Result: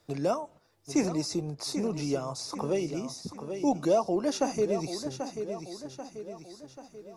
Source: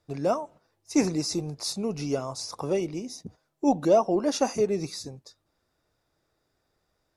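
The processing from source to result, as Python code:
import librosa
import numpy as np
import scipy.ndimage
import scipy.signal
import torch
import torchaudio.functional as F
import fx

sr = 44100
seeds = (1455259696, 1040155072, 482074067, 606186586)

y = fx.echo_feedback(x, sr, ms=787, feedback_pct=36, wet_db=-11.5)
y = fx.band_squash(y, sr, depth_pct=40)
y = F.gain(torch.from_numpy(y), -2.5).numpy()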